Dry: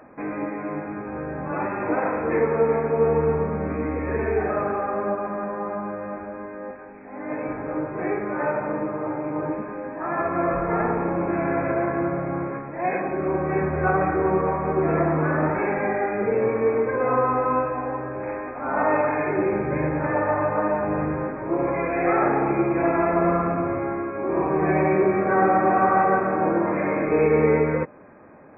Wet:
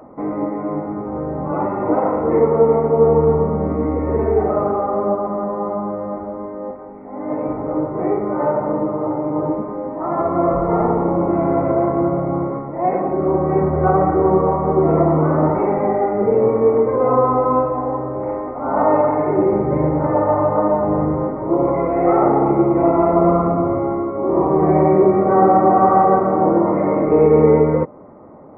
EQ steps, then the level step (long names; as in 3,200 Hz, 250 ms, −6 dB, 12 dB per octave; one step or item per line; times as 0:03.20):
Savitzky-Golay smoothing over 65 samples
+7.0 dB